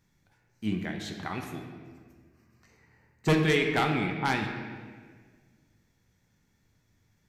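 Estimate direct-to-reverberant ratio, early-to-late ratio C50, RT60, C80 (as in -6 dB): 2.5 dB, 4.5 dB, 1.6 s, 6.0 dB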